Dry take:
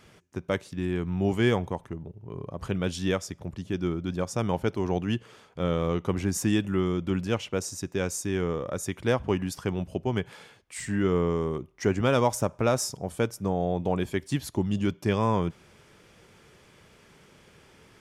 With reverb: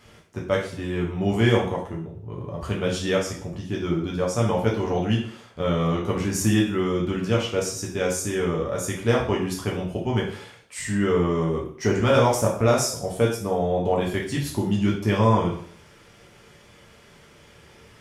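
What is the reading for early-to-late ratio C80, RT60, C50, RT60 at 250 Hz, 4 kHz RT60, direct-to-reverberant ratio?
10.0 dB, 0.55 s, 6.0 dB, 0.55 s, 0.50 s, -3.5 dB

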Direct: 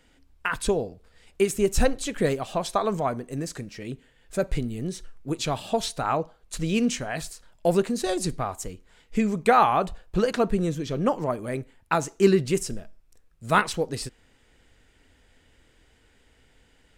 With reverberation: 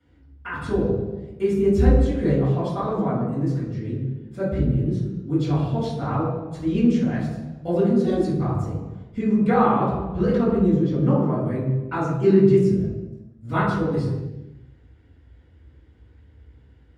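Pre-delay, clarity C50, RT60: 3 ms, 0.0 dB, 1.2 s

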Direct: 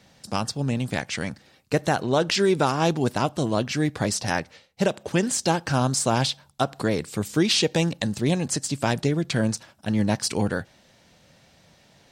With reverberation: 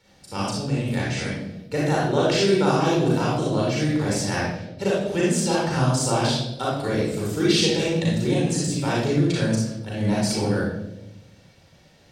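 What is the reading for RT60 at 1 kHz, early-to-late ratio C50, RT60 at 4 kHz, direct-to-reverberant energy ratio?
0.75 s, -1.5 dB, 0.65 s, -5.5 dB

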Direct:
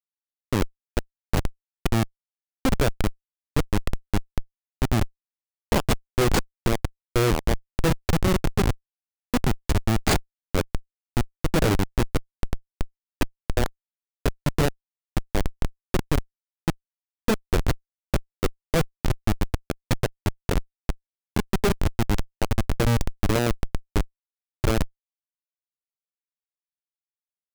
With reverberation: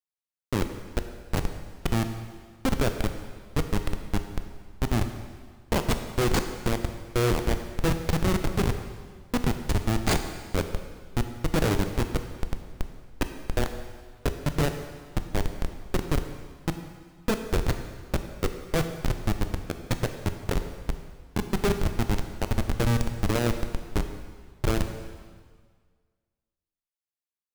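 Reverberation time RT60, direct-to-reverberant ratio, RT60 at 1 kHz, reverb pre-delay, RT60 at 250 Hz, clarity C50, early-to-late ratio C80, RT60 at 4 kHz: 1.7 s, 7.0 dB, 1.7 s, 8 ms, 1.7 s, 8.0 dB, 9.5 dB, 1.6 s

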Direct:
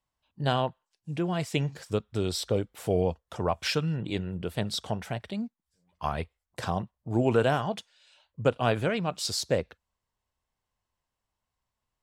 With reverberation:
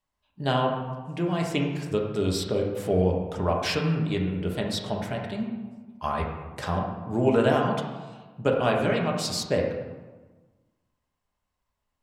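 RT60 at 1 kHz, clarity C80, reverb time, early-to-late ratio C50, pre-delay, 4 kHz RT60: 1.4 s, 6.0 dB, 1.3 s, 3.5 dB, 3 ms, 0.85 s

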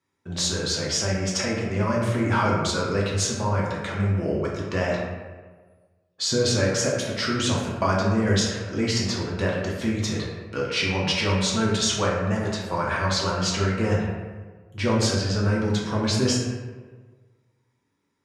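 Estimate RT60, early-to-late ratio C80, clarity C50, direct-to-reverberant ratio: 1.4 s, 3.5 dB, 1.0 dB, -4.5 dB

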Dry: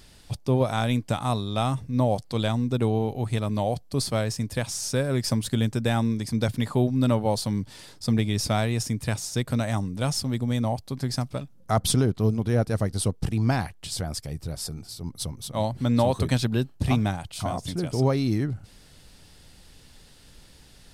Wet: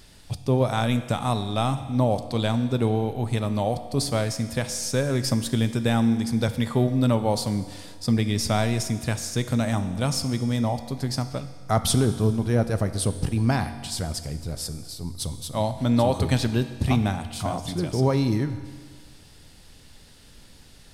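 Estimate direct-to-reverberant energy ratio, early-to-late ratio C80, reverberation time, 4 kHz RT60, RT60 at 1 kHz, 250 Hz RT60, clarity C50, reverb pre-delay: 9.5 dB, 12.5 dB, 1.7 s, 1.7 s, 1.7 s, 1.7 s, 11.5 dB, 4 ms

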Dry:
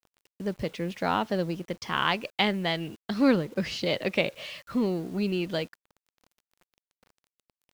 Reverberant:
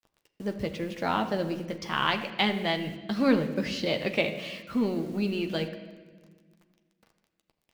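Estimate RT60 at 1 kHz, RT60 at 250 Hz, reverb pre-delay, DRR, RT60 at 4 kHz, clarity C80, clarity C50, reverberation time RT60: 1.2 s, 2.2 s, 9 ms, 5.0 dB, 1.1 s, 11.0 dB, 10.0 dB, 1.4 s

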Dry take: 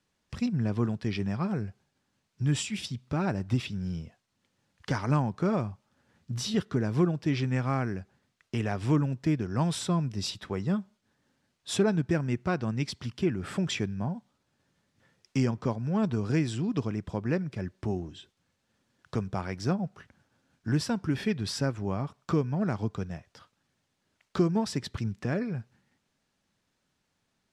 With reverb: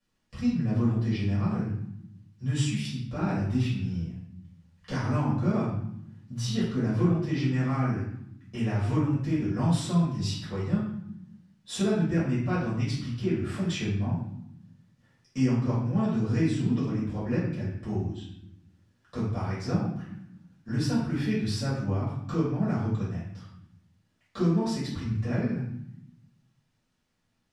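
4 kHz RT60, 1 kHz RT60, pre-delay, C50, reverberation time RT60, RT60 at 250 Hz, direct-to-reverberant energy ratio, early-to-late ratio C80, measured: 0.60 s, 0.70 s, 4 ms, 1.5 dB, 0.75 s, 1.3 s, -10.0 dB, 5.0 dB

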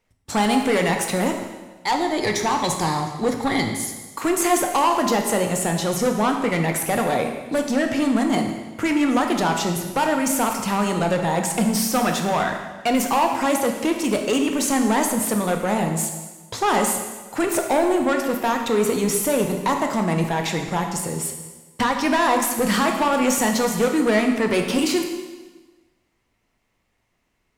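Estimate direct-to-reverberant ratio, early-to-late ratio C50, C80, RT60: 3.5 dB, 5.5 dB, 7.0 dB, 1.3 s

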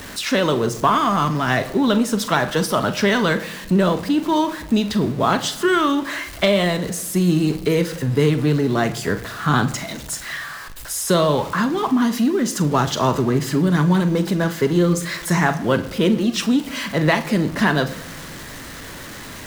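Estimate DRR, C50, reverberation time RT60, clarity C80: 10.0 dB, 15.0 dB, 1.0 s, 17.0 dB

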